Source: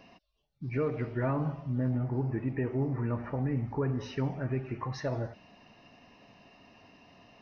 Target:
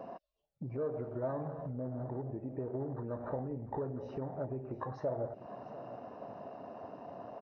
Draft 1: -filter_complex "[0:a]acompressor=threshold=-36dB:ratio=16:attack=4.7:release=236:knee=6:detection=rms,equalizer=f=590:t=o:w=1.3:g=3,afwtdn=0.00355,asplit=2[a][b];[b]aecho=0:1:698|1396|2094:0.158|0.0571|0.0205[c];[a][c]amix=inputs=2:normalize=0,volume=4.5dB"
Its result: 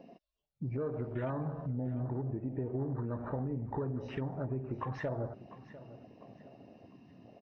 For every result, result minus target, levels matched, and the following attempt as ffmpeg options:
compressor: peak gain reduction -6 dB; 500 Hz band -5.0 dB
-filter_complex "[0:a]acompressor=threshold=-42.5dB:ratio=16:attack=4.7:release=236:knee=6:detection=rms,equalizer=f=590:t=o:w=1.3:g=3,afwtdn=0.00355,asplit=2[a][b];[b]aecho=0:1:698|1396|2094:0.158|0.0571|0.0205[c];[a][c]amix=inputs=2:normalize=0,volume=4.5dB"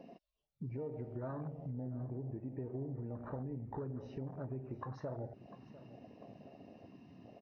500 Hz band -5.0 dB
-filter_complex "[0:a]acompressor=threshold=-42.5dB:ratio=16:attack=4.7:release=236:knee=6:detection=rms,equalizer=f=590:t=o:w=1.3:g=12.5,afwtdn=0.00355,asplit=2[a][b];[b]aecho=0:1:698|1396|2094:0.158|0.0571|0.0205[c];[a][c]amix=inputs=2:normalize=0,volume=4.5dB"

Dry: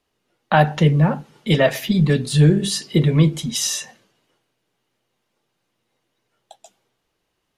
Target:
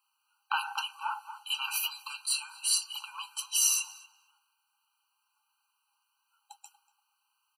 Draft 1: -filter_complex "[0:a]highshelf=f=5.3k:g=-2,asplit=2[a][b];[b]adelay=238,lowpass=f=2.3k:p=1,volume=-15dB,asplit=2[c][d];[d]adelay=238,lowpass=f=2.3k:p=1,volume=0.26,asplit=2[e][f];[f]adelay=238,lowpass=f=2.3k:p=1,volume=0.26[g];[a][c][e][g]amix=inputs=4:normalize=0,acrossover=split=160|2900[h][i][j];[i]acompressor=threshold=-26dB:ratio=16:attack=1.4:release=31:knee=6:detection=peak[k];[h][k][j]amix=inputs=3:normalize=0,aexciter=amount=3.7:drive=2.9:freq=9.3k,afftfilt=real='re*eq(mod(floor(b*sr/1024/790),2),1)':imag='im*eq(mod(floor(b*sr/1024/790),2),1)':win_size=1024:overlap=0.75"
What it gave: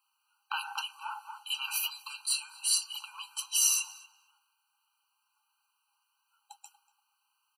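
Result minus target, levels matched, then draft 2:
compressor: peak gain reduction +6 dB
-filter_complex "[0:a]highshelf=f=5.3k:g=-2,asplit=2[a][b];[b]adelay=238,lowpass=f=2.3k:p=1,volume=-15dB,asplit=2[c][d];[d]adelay=238,lowpass=f=2.3k:p=1,volume=0.26,asplit=2[e][f];[f]adelay=238,lowpass=f=2.3k:p=1,volume=0.26[g];[a][c][e][g]amix=inputs=4:normalize=0,acrossover=split=160|2900[h][i][j];[i]acompressor=threshold=-19.5dB:ratio=16:attack=1.4:release=31:knee=6:detection=peak[k];[h][k][j]amix=inputs=3:normalize=0,aexciter=amount=3.7:drive=2.9:freq=9.3k,afftfilt=real='re*eq(mod(floor(b*sr/1024/790),2),1)':imag='im*eq(mod(floor(b*sr/1024/790),2),1)':win_size=1024:overlap=0.75"

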